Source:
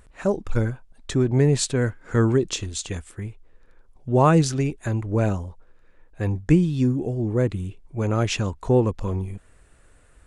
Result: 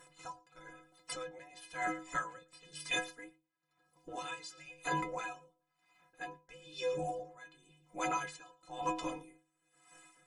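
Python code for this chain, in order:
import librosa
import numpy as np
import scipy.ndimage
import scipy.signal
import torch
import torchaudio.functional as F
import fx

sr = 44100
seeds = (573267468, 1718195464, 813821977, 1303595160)

y = scipy.signal.sosfilt(scipy.signal.butter(2, 45.0, 'highpass', fs=sr, output='sos'), x)
y = fx.spec_gate(y, sr, threshold_db=-15, keep='weak')
y = fx.dynamic_eq(y, sr, hz=3300.0, q=1.2, threshold_db=-52.0, ratio=4.0, max_db=5)
y = fx.stiff_resonator(y, sr, f0_hz=150.0, decay_s=0.47, stiffness=0.03)
y = y + 10.0 ** (-19.5 / 20.0) * np.pad(y, (int(113 * sr / 1000.0), 0))[:len(y)]
y = y * 10.0 ** (-25 * (0.5 - 0.5 * np.cos(2.0 * np.pi * 1.0 * np.arange(len(y)) / sr)) / 20.0)
y = y * librosa.db_to_amplitude(18.0)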